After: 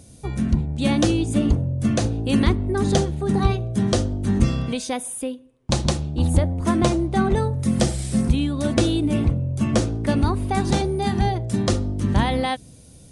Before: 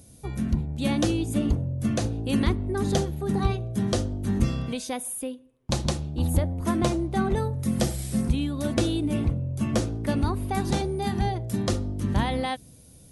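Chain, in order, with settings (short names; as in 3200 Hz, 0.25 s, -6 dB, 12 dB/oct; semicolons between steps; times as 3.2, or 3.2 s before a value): downsampling 22050 Hz; gain +5 dB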